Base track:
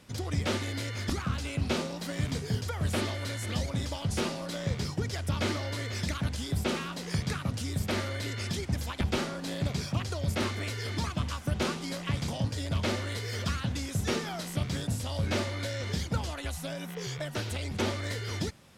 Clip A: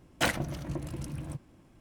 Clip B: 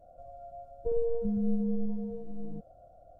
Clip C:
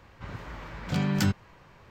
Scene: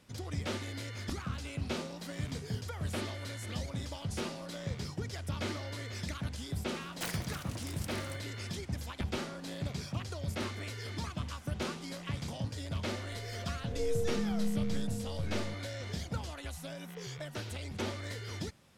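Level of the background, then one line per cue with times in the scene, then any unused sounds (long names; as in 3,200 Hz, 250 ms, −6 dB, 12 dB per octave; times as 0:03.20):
base track −6.5 dB
0:06.80: mix in A −10.5 dB + every bin compressed towards the loudest bin 2 to 1
0:12.94: mix in B −4 dB + peak hold with a rise ahead of every peak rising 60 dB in 0.54 s
not used: C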